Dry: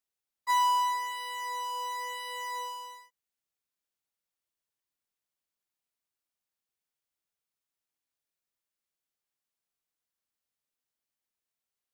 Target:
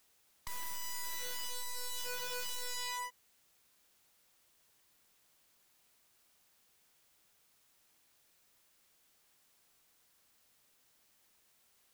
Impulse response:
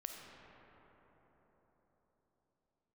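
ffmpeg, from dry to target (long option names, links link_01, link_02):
-filter_complex "[0:a]acrossover=split=480|3000[link_01][link_02][link_03];[link_02]acompressor=threshold=-34dB:ratio=10[link_04];[link_01][link_04][link_03]amix=inputs=3:normalize=0,aeval=exprs='(tanh(178*val(0)+0.3)-tanh(0.3))/178':channel_layout=same,aeval=exprs='0.0075*sin(PI/2*3.16*val(0)/0.0075)':channel_layout=same,volume=6dB"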